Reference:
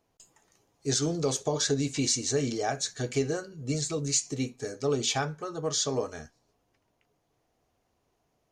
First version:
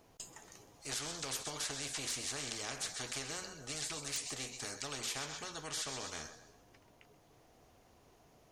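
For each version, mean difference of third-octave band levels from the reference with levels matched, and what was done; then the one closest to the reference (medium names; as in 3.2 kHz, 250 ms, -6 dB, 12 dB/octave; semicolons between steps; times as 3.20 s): 12.0 dB: on a send: thinning echo 130 ms, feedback 39%, high-pass 950 Hz, level -19 dB; on the sum: spectrum-flattening compressor 4:1; trim -6.5 dB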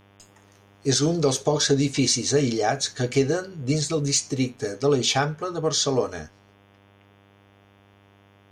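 1.0 dB: peaking EQ 7.3 kHz -6.5 dB 0.32 oct; mains buzz 100 Hz, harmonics 36, -63 dBFS -4 dB/octave; trim +7 dB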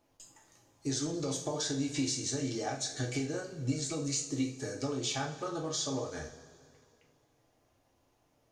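5.0 dB: compression, threshold -34 dBFS, peak gain reduction 12 dB; two-slope reverb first 0.38 s, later 2.4 s, from -18 dB, DRR 0 dB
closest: second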